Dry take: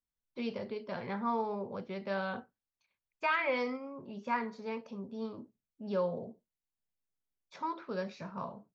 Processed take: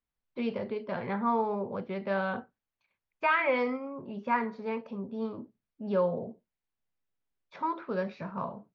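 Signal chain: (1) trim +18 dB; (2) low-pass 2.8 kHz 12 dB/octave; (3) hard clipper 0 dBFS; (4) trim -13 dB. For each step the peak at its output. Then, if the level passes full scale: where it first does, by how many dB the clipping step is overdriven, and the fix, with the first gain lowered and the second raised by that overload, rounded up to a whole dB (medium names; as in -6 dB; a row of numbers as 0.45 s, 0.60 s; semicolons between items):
-1.0 dBFS, -2.0 dBFS, -2.0 dBFS, -15.0 dBFS; nothing clips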